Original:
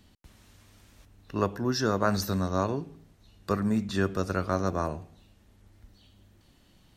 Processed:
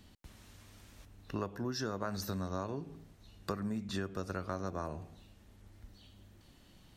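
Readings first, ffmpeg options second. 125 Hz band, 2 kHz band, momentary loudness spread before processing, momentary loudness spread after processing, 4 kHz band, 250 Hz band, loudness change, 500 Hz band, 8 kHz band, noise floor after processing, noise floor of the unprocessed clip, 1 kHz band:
−9.5 dB, −10.5 dB, 10 LU, 20 LU, −8.0 dB, −10.0 dB, −10.5 dB, −10.5 dB, −8.5 dB, −61 dBFS, −61 dBFS, −10.5 dB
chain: -af "acompressor=threshold=-34dB:ratio=6"

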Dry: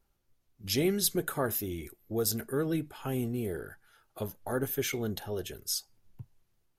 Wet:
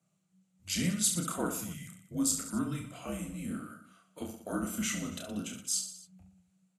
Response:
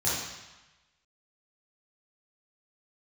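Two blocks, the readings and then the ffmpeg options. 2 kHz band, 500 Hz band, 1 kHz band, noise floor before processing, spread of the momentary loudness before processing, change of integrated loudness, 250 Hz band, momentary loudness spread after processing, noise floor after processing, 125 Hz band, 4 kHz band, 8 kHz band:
−2.5 dB, −10.5 dB, −2.0 dB, −75 dBFS, 12 LU, −1.5 dB, −0.5 dB, 15 LU, −76 dBFS, −3.0 dB, −2.0 dB, +4.0 dB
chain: -af "aecho=1:1:30|69|119.7|185.6|271.3:0.631|0.398|0.251|0.158|0.1,afreqshift=-190,highpass=200,equalizer=frequency=400:width_type=q:width=4:gain=-6,equalizer=frequency=1000:width_type=q:width=4:gain=-7,equalizer=frequency=1800:width_type=q:width=4:gain=-6,equalizer=frequency=3500:width_type=q:width=4:gain=-4,equalizer=frequency=5100:width_type=q:width=4:gain=-7,equalizer=frequency=7500:width_type=q:width=4:gain=9,lowpass=frequency=9800:width=0.5412,lowpass=frequency=9800:width=1.3066"

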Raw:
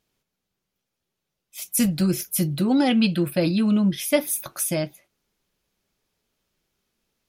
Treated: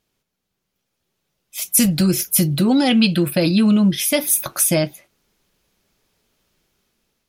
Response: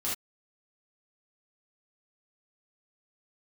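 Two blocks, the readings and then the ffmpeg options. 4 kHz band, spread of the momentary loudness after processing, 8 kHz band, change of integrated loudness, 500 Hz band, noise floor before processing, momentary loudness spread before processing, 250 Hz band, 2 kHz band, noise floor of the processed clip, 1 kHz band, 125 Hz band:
+8.0 dB, 5 LU, +9.0 dB, +5.5 dB, +3.5 dB, −82 dBFS, 7 LU, +4.5 dB, +5.5 dB, −77 dBFS, +3.5 dB, +5.5 dB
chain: -filter_complex "[0:a]acrossover=split=2700[link_01][link_02];[link_01]alimiter=limit=-18dB:level=0:latency=1:release=205[link_03];[link_03][link_02]amix=inputs=2:normalize=0,dynaudnorm=framelen=360:gausssize=5:maxgain=6.5dB,volume=2.5dB"

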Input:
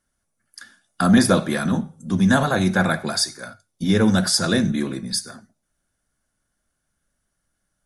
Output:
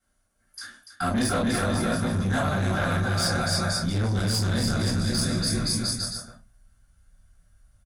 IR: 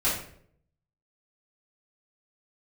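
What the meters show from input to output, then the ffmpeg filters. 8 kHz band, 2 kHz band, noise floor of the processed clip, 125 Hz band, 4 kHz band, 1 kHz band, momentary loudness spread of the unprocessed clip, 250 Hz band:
−2.5 dB, −4.5 dB, −69 dBFS, −0.5 dB, −2.0 dB, −3.5 dB, 10 LU, −7.5 dB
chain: -filter_complex "[0:a]agate=range=-7dB:threshold=-38dB:ratio=16:detection=peak,aecho=1:1:290|522|707.6|856.1|974.9:0.631|0.398|0.251|0.158|0.1,asubboost=boost=11:cutoff=92[link_01];[1:a]atrim=start_sample=2205,atrim=end_sample=3528[link_02];[link_01][link_02]afir=irnorm=-1:irlink=0,asoftclip=type=tanh:threshold=-4dB,highpass=frequency=70:poles=1,areverse,acompressor=threshold=-22dB:ratio=12,areverse"

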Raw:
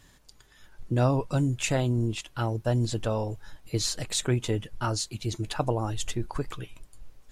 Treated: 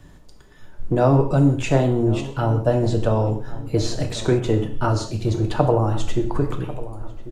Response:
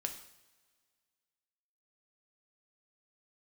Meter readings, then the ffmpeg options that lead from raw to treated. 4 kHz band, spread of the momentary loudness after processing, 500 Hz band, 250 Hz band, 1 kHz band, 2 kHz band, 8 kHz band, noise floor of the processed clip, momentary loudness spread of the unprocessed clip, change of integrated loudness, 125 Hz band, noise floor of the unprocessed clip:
−0.5 dB, 9 LU, +10.0 dB, +9.5 dB, +8.5 dB, +4.0 dB, −4.0 dB, −45 dBFS, 9 LU, +7.5 dB, +7.5 dB, −58 dBFS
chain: -filter_complex "[0:a]acrossover=split=280|440|2300[link_01][link_02][link_03][link_04];[link_01]volume=31.5dB,asoftclip=hard,volume=-31.5dB[link_05];[link_05][link_02][link_03][link_04]amix=inputs=4:normalize=0,acrossover=split=7200[link_06][link_07];[link_07]acompressor=threshold=-45dB:ratio=4:attack=1:release=60[link_08];[link_06][link_08]amix=inputs=2:normalize=0,tiltshelf=frequency=1300:gain=7.5,asplit=2[link_09][link_10];[link_10]adelay=1094,lowpass=frequency=1600:poles=1,volume=-16dB,asplit=2[link_11][link_12];[link_12]adelay=1094,lowpass=frequency=1600:poles=1,volume=0.51,asplit=2[link_13][link_14];[link_14]adelay=1094,lowpass=frequency=1600:poles=1,volume=0.51,asplit=2[link_15][link_16];[link_16]adelay=1094,lowpass=frequency=1600:poles=1,volume=0.51,asplit=2[link_17][link_18];[link_18]adelay=1094,lowpass=frequency=1600:poles=1,volume=0.51[link_19];[link_09][link_11][link_13][link_15][link_17][link_19]amix=inputs=6:normalize=0[link_20];[1:a]atrim=start_sample=2205,afade=type=out:start_time=0.25:duration=0.01,atrim=end_sample=11466[link_21];[link_20][link_21]afir=irnorm=-1:irlink=0,volume=6dB"

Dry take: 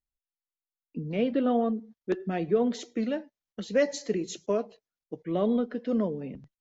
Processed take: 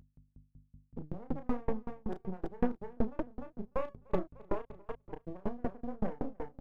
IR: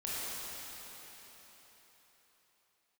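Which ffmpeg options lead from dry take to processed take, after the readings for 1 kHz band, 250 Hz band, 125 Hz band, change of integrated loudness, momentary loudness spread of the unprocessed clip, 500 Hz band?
−6.0 dB, −10.0 dB, −5.0 dB, −10.5 dB, 15 LU, −11.0 dB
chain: -filter_complex "[0:a]lowpass=1100,bandreject=frequency=610:width=15,afftfilt=real='re*gte(hypot(re,im),0.126)':imag='im*gte(hypot(re,im),0.126)':win_size=1024:overlap=0.75,equalizer=frequency=330:width_type=o:width=0.46:gain=-6,areverse,acompressor=threshold=-39dB:ratio=16,areverse,aeval=exprs='max(val(0),0)':channel_layout=same,aeval=exprs='val(0)+0.000708*(sin(2*PI*50*n/s)+sin(2*PI*2*50*n/s)/2+sin(2*PI*3*50*n/s)/3+sin(2*PI*4*50*n/s)/4+sin(2*PI*5*50*n/s)/5)':channel_layout=same,aeval=exprs='0.0224*(cos(1*acos(clip(val(0)/0.0224,-1,1)))-cos(1*PI/2))+0.000355*(cos(3*acos(clip(val(0)/0.0224,-1,1)))-cos(3*PI/2))+0.000178*(cos(5*acos(clip(val(0)/0.0224,-1,1)))-cos(5*PI/2))+0.000158*(cos(6*acos(clip(val(0)/0.0224,-1,1)))-cos(6*PI/2))+0.00158*(cos(7*acos(clip(val(0)/0.0224,-1,1)))-cos(7*PI/2))':channel_layout=same,asplit=2[link_01][link_02];[link_02]adelay=33,volume=-2dB[link_03];[link_01][link_03]amix=inputs=2:normalize=0,aecho=1:1:300|600|900|1200:0.376|0.113|0.0338|0.0101,aeval=exprs='val(0)*pow(10,-34*if(lt(mod(5.3*n/s,1),2*abs(5.3)/1000),1-mod(5.3*n/s,1)/(2*abs(5.3)/1000),(mod(5.3*n/s,1)-2*abs(5.3)/1000)/(1-2*abs(5.3)/1000))/20)':channel_layout=same,volume=17dB"

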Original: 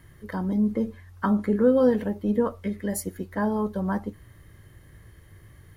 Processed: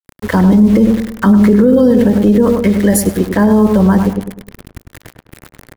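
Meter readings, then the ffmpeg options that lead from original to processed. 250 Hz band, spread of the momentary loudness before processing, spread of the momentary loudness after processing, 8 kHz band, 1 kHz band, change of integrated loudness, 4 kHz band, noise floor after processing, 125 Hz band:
+16.5 dB, 11 LU, 6 LU, +16.5 dB, +12.0 dB, +15.0 dB, can't be measured, −62 dBFS, +18.0 dB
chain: -filter_complex "[0:a]aeval=exprs='val(0)*gte(abs(val(0)),0.0075)':channel_layout=same,acrossover=split=460|3000[link_01][link_02][link_03];[link_02]acompressor=threshold=-34dB:ratio=6[link_04];[link_01][link_04][link_03]amix=inputs=3:normalize=0,agate=range=-33dB:threshold=-56dB:ratio=3:detection=peak,asplit=2[link_05][link_06];[link_06]adelay=102,lowpass=frequency=1500:poles=1,volume=-6.5dB,asplit=2[link_07][link_08];[link_08]adelay=102,lowpass=frequency=1500:poles=1,volume=0.42,asplit=2[link_09][link_10];[link_10]adelay=102,lowpass=frequency=1500:poles=1,volume=0.42,asplit=2[link_11][link_12];[link_12]adelay=102,lowpass=frequency=1500:poles=1,volume=0.42,asplit=2[link_13][link_14];[link_14]adelay=102,lowpass=frequency=1500:poles=1,volume=0.42[link_15];[link_05][link_07][link_09][link_11][link_13][link_15]amix=inputs=6:normalize=0,alimiter=level_in=20.5dB:limit=-1dB:release=50:level=0:latency=1,volume=-1dB"

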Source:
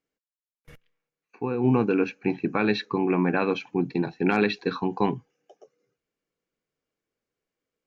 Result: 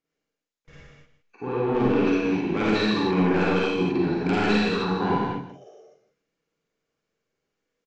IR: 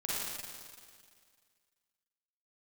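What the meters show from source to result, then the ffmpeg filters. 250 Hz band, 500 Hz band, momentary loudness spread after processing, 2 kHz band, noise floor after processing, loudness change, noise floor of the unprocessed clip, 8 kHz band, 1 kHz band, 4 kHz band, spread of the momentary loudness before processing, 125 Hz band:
+2.0 dB, +2.0 dB, 8 LU, +2.0 dB, −85 dBFS, +2.0 dB, below −85 dBFS, can't be measured, +3.0 dB, +5.5 dB, 6 LU, +2.0 dB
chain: -filter_complex "[0:a]aresample=16000,asoftclip=type=tanh:threshold=-21.5dB,aresample=44100,aecho=1:1:161:0.224[link_01];[1:a]atrim=start_sample=2205,afade=type=out:start_time=0.36:duration=0.01,atrim=end_sample=16317[link_02];[link_01][link_02]afir=irnorm=-1:irlink=0,volume=1.5dB"

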